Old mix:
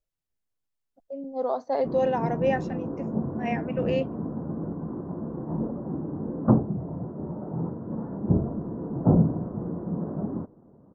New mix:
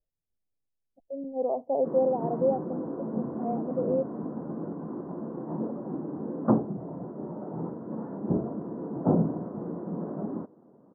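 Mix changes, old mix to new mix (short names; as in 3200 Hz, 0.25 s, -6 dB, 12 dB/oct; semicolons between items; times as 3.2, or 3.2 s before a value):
speech: add inverse Chebyshev low-pass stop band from 1500 Hz, stop band 40 dB; background: add HPF 220 Hz 12 dB/oct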